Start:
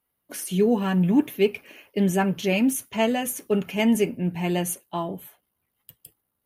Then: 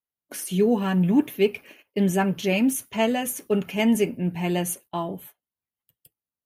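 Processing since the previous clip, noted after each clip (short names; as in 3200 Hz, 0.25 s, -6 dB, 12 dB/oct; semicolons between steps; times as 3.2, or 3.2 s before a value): gate -45 dBFS, range -18 dB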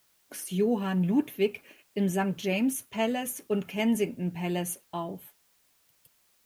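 added noise white -62 dBFS; gain -5.5 dB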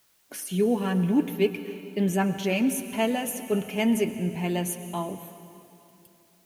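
reverb RT60 2.8 s, pre-delay 98 ms, DRR 10.5 dB; gain +2.5 dB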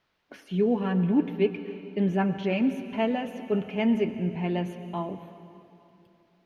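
air absorption 290 m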